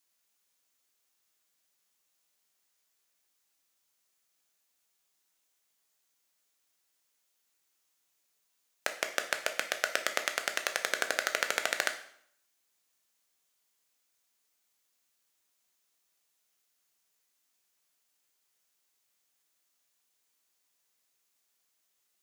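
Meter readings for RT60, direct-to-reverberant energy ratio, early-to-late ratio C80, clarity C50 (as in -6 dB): 0.65 s, 6.0 dB, 14.0 dB, 10.5 dB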